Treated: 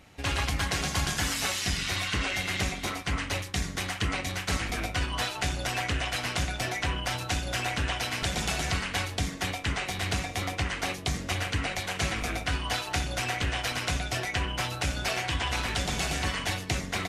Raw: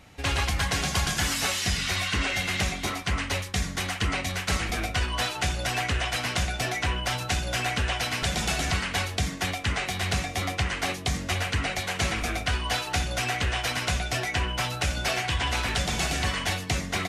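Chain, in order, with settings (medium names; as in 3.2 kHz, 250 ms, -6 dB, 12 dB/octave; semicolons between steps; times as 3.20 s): AM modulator 210 Hz, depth 40%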